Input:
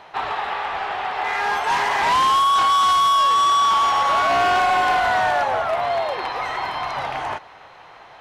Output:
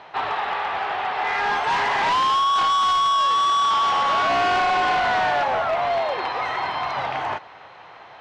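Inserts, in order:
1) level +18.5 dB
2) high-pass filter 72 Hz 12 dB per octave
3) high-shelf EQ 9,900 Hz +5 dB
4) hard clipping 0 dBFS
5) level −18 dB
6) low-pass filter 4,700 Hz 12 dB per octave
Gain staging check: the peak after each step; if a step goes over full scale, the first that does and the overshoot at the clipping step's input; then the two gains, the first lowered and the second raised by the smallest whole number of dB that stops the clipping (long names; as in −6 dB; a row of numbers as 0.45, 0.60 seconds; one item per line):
+5.5, +6.5, +6.5, 0.0, −18.0, −17.0 dBFS
step 1, 6.5 dB
step 1 +11.5 dB, step 5 −11 dB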